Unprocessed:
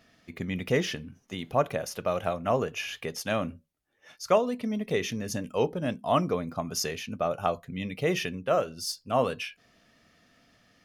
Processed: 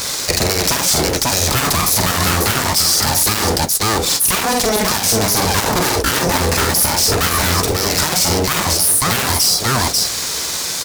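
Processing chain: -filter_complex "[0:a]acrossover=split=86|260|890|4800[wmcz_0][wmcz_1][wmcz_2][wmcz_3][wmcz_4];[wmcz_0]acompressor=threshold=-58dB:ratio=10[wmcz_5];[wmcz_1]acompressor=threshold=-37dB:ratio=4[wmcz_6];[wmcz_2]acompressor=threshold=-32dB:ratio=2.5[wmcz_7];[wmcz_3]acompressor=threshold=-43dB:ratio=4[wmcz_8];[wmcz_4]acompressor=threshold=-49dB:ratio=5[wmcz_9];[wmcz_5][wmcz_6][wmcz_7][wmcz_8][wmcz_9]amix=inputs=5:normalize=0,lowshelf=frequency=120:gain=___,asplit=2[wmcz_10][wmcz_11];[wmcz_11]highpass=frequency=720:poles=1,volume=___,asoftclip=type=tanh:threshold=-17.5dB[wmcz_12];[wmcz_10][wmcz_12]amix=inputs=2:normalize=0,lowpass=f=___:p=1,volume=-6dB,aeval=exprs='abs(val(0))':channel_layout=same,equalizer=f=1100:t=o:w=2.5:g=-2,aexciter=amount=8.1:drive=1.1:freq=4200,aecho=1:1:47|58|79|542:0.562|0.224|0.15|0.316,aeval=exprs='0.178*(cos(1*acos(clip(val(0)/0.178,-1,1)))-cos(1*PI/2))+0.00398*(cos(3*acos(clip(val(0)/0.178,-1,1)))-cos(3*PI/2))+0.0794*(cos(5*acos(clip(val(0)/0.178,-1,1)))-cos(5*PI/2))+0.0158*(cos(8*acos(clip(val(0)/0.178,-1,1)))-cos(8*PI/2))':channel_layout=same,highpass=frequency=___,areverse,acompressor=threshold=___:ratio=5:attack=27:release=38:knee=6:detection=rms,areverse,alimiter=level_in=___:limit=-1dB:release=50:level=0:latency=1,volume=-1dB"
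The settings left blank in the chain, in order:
-2, 13dB, 1300, 58, -43dB, 27.5dB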